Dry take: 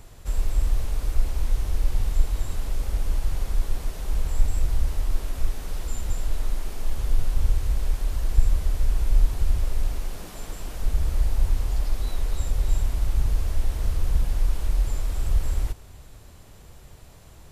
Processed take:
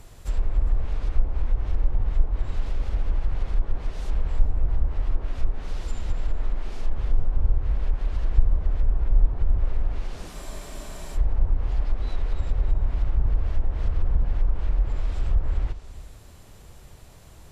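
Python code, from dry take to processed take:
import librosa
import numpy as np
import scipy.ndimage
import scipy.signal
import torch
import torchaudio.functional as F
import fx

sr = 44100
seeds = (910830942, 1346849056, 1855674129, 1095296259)

y = fx.env_lowpass_down(x, sr, base_hz=1100.0, full_db=-14.5)
y = y + 10.0 ** (-18.0 / 20.0) * np.pad(y, (int(401 * sr / 1000.0), 0))[:len(y)]
y = fx.spec_freeze(y, sr, seeds[0], at_s=10.35, hold_s=0.81)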